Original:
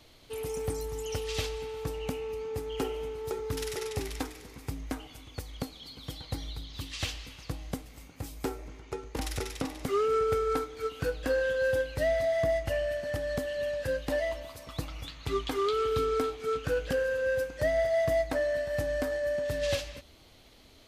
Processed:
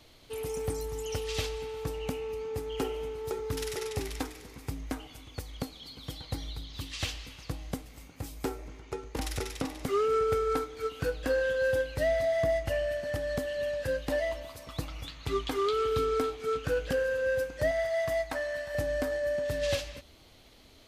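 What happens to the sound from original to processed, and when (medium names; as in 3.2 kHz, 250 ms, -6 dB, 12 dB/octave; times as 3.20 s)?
17.71–18.75 s: resonant low shelf 660 Hz -6.5 dB, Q 1.5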